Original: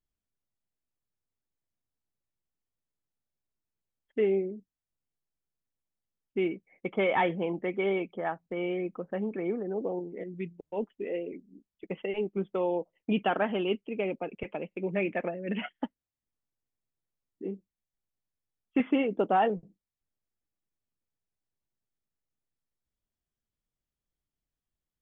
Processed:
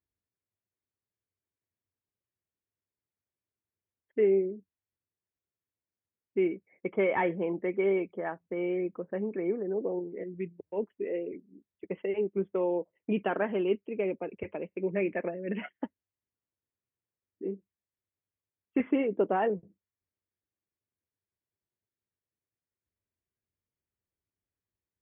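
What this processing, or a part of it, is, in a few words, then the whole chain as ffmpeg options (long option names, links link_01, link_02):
bass cabinet: -af "highpass=76,equalizer=frequency=93:width_type=q:width=4:gain=7,equalizer=frequency=150:width_type=q:width=4:gain=-5,equalizer=frequency=240:width_type=q:width=4:gain=-3,equalizer=frequency=390:width_type=q:width=4:gain=3,equalizer=frequency=770:width_type=q:width=4:gain=-6,equalizer=frequency=1300:width_type=q:width=4:gain=-5,lowpass=frequency=2300:width=0.5412,lowpass=frequency=2300:width=1.3066"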